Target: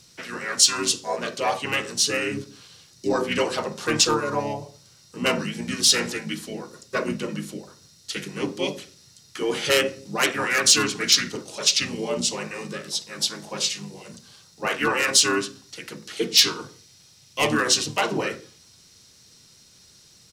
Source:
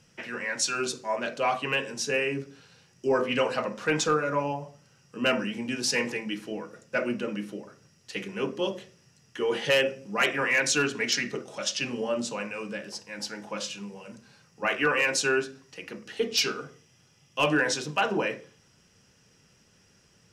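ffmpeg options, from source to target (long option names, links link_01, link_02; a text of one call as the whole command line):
ffmpeg -i in.wav -filter_complex "[0:a]aexciter=amount=2.7:drive=7.3:freq=3500,asplit=2[link_01][link_02];[link_02]asetrate=33038,aresample=44100,atempo=1.33484,volume=-3dB[link_03];[link_01][link_03]amix=inputs=2:normalize=0" out.wav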